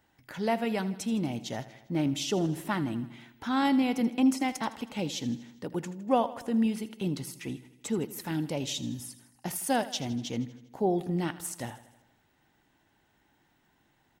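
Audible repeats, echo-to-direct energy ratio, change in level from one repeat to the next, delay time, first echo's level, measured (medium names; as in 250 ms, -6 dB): 5, -14.0 dB, -4.5 dB, 80 ms, -16.0 dB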